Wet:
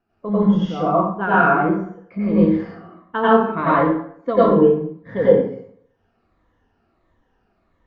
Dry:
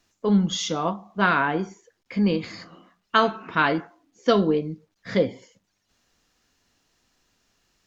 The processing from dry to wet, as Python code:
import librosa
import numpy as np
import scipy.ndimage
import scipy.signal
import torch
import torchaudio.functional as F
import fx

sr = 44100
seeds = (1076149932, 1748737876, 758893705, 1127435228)

y = fx.spec_ripple(x, sr, per_octave=1.1, drift_hz=-1.5, depth_db=10)
y = scipy.signal.sosfilt(scipy.signal.butter(2, 1200.0, 'lowpass', fs=sr, output='sos'), y)
y = fx.rev_plate(y, sr, seeds[0], rt60_s=0.61, hf_ratio=0.75, predelay_ms=80, drr_db=-9.0)
y = F.gain(torch.from_numpy(y), -2.5).numpy()